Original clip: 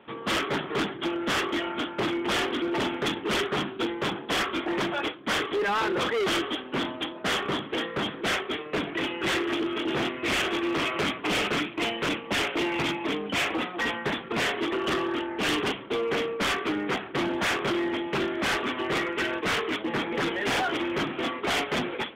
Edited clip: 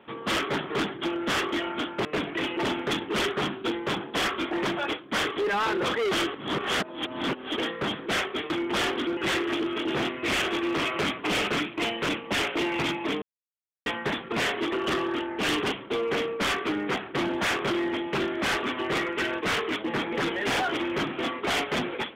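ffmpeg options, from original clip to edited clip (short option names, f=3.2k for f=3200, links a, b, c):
-filter_complex "[0:a]asplit=9[a][b][c][d][e][f][g][h][i];[a]atrim=end=2.052[j];[b]atrim=start=8.648:end=9.172[k];[c]atrim=start=2.718:end=6.492[l];[d]atrim=start=6.488:end=7.732,asetpts=PTS-STARTPTS,areverse[m];[e]atrim=start=7.728:end=8.652[n];[f]atrim=start=2.048:end=2.722[o];[g]atrim=start=9.168:end=13.22,asetpts=PTS-STARTPTS,afade=t=out:st=4.048:d=0.004:c=hsin[p];[h]atrim=start=13.22:end=13.86,asetpts=PTS-STARTPTS,volume=0[q];[i]atrim=start=13.86,asetpts=PTS-STARTPTS,afade=t=in:d=0.004:c=hsin[r];[j][k]acrossfade=d=0.004:c1=hsin:c2=hsin[s];[s][l]acrossfade=d=0.004:c1=hsin:c2=hsin[t];[t][m]acrossfade=d=0.004:c1=hsin:c2=hsin[u];[u][n]acrossfade=d=0.004:c1=hsin:c2=hsin[v];[v][o]acrossfade=d=0.004:c1=hsin:c2=hsin[w];[p][q][r]concat=n=3:v=0:a=1[x];[w][x]acrossfade=d=0.004:c1=hsin:c2=hsin"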